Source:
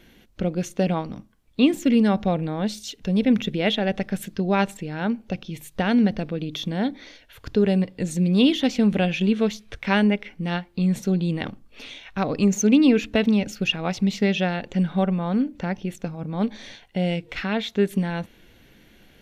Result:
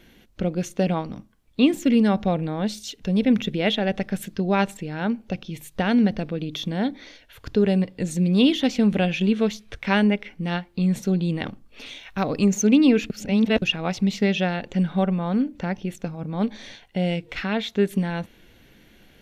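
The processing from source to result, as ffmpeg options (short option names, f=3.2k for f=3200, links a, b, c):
-filter_complex "[0:a]asettb=1/sr,asplit=3[a][b][c];[a]atrim=end=11.864[d];[b]atrim=start=11.86:end=12.46,asetpts=PTS-STARTPTS,afade=t=in:d=0.004:c=qsin,afade=t=out:st=0.596:d=0.004:c=qsin,highshelf=f=9.1k:g=9[e];[c]atrim=start=12.456[f];[d][e]acrossfade=d=0.004:c1=hsin:c2=qsin[g];[g][f]acrossfade=d=0.004:c1=qsin:c2=hsin,asplit=3[h][i][j];[h]atrim=end=13.102[k];[i]atrim=start=13.098:end=13.622,asetpts=PTS-STARTPTS,areverse[l];[j]atrim=start=13.618[m];[k][l]acrossfade=d=0.004:c1=hsin:c2=hsin[n];[n][m]acrossfade=d=0.004:c1=hsin:c2=hsin"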